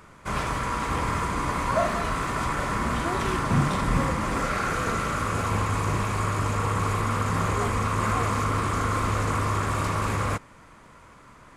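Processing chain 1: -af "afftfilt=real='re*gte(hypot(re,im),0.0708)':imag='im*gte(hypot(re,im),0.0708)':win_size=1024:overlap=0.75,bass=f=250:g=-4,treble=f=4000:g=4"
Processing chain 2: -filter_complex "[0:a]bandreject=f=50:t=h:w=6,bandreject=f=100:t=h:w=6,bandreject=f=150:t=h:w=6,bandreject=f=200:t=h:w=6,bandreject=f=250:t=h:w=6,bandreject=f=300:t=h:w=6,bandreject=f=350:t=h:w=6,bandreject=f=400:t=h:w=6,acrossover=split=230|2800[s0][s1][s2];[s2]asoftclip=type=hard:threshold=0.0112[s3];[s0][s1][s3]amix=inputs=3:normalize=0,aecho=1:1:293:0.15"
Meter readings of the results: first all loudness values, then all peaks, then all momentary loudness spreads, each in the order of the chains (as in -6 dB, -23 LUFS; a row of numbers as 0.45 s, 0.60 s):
-28.5 LUFS, -26.5 LUFS; -11.5 dBFS, -11.0 dBFS; 3 LU, 3 LU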